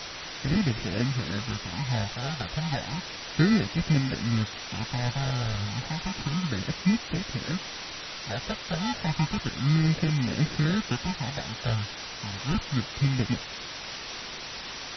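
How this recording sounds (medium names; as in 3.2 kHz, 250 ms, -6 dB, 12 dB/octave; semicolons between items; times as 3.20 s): aliases and images of a low sample rate 1.1 kHz, jitter 0%; phasing stages 8, 0.32 Hz, lowest notch 300–1100 Hz; a quantiser's noise floor 6-bit, dither triangular; MP3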